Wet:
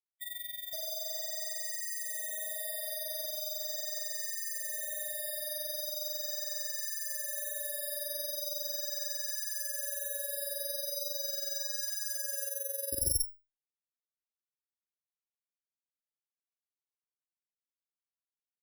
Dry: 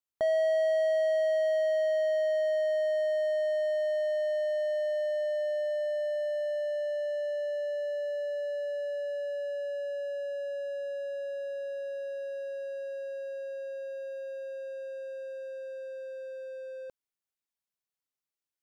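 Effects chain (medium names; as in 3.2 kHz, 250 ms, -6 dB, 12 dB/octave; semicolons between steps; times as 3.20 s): resonant high shelf 1.8 kHz +9.5 dB, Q 3; Schmitt trigger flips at -32 dBFS; FFT filter 300 Hz 0 dB, 800 Hz -19 dB, 2.1 kHz -5 dB, 2.9 kHz -20 dB, 4.2 kHz -18 dB; AM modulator 22 Hz, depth 65%; sine folder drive 5 dB, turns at -27 dBFS; spectral gate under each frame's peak -20 dB strong; three bands offset in time mids, lows, highs 520/600 ms, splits 1.2/4.4 kHz; careless resampling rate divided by 8×, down none, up zero stuff; barber-pole phaser +0.39 Hz; trim -2.5 dB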